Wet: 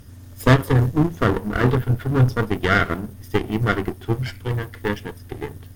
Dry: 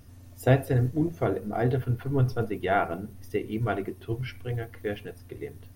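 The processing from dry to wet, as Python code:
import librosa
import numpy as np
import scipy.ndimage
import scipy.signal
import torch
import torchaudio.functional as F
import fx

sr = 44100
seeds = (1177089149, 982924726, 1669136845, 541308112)

y = fx.lower_of_two(x, sr, delay_ms=0.59)
y = fx.cheby_harmonics(y, sr, harmonics=(8,), levels_db=(-20,), full_scale_db=-8.5)
y = F.gain(torch.from_numpy(y), 8.0).numpy()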